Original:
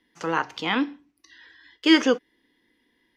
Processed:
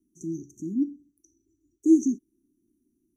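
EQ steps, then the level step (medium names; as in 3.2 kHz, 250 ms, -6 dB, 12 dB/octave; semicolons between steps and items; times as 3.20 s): brick-wall FIR band-stop 400–5700 Hz; 0.0 dB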